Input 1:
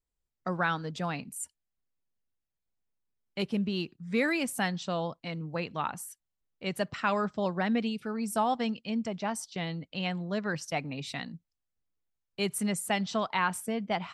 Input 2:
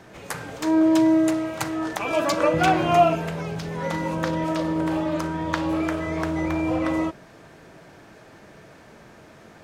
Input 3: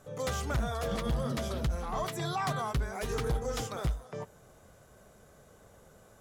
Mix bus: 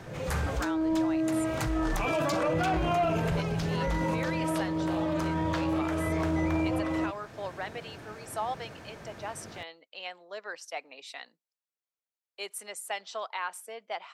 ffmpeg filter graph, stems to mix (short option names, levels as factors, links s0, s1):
-filter_complex "[0:a]highpass=f=450:w=0.5412,highpass=f=450:w=1.3066,volume=0.596,asplit=2[s0][s1];[1:a]equalizer=f=100:w=1.9:g=7,asoftclip=type=tanh:threshold=0.266,volume=1.12[s2];[2:a]aemphasis=mode=reproduction:type=bsi,asplit=2[s3][s4];[s4]adelay=3.8,afreqshift=0.5[s5];[s3][s5]amix=inputs=2:normalize=1,volume=0.668[s6];[s1]apad=whole_len=273829[s7];[s6][s7]sidechaincompress=threshold=0.00282:ratio=8:attack=16:release=119[s8];[s2][s8]amix=inputs=2:normalize=0,alimiter=limit=0.0891:level=0:latency=1:release=17,volume=1[s9];[s0][s9]amix=inputs=2:normalize=0,alimiter=limit=0.0891:level=0:latency=1:release=392"